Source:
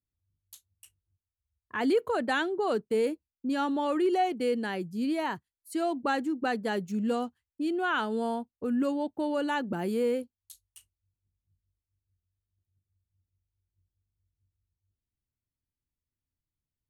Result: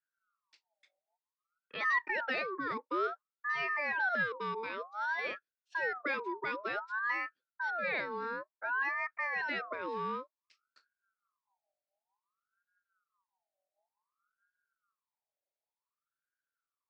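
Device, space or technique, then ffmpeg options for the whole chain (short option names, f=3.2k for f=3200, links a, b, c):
voice changer toy: -af "lowpass=6k,aeval=exprs='val(0)*sin(2*PI*1100*n/s+1100*0.4/0.55*sin(2*PI*0.55*n/s))':c=same,highpass=400,equalizer=f=760:t=q:w=4:g=-10,equalizer=f=1.1k:t=q:w=4:g=-5,equalizer=f=3.1k:t=q:w=4:g=-9,lowpass=f=4.5k:w=0.5412,lowpass=f=4.5k:w=1.3066"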